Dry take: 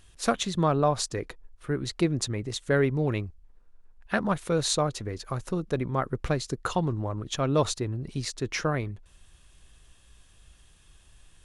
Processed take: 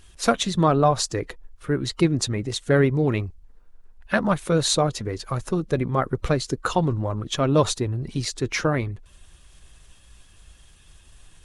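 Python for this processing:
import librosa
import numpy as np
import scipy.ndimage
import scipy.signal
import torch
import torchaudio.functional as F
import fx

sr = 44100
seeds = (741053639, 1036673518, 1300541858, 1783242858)

y = fx.spec_quant(x, sr, step_db=15)
y = y * 10.0 ** (5.5 / 20.0)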